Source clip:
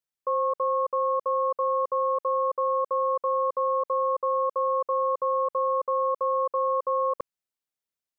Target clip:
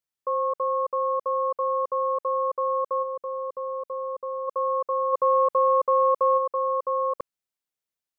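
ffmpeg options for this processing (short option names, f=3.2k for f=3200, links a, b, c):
-filter_complex "[0:a]asplit=3[a][b][c];[a]afade=t=out:st=3.02:d=0.02[d];[b]equalizer=f=1k:t=o:w=1.9:g=-8.5,afade=t=in:st=3.02:d=0.02,afade=t=out:st=4.47:d=0.02[e];[c]afade=t=in:st=4.47:d=0.02[f];[d][e][f]amix=inputs=3:normalize=0,asplit=3[g][h][i];[g]afade=t=out:st=5.12:d=0.02[j];[h]acontrast=29,afade=t=in:st=5.12:d=0.02,afade=t=out:st=6.37:d=0.02[k];[i]afade=t=in:st=6.37:d=0.02[l];[j][k][l]amix=inputs=3:normalize=0"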